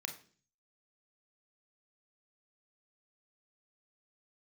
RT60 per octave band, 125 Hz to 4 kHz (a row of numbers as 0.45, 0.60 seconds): 0.75, 0.60, 0.50, 0.40, 0.40, 0.50 seconds